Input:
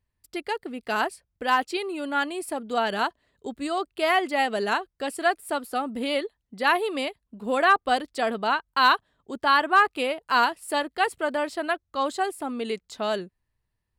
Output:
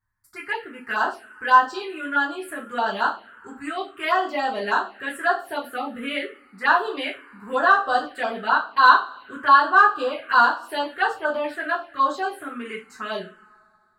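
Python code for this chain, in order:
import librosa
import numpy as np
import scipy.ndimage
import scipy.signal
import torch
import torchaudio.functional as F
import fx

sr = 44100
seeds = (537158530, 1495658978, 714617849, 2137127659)

y = fx.peak_eq(x, sr, hz=1400.0, db=13.5, octaves=1.3)
y = fx.rev_double_slope(y, sr, seeds[0], early_s=0.31, late_s=2.3, knee_db=-27, drr_db=-5.5)
y = fx.env_phaser(y, sr, low_hz=490.0, high_hz=2200.0, full_db=-7.5)
y = F.gain(torch.from_numpy(y), -7.5).numpy()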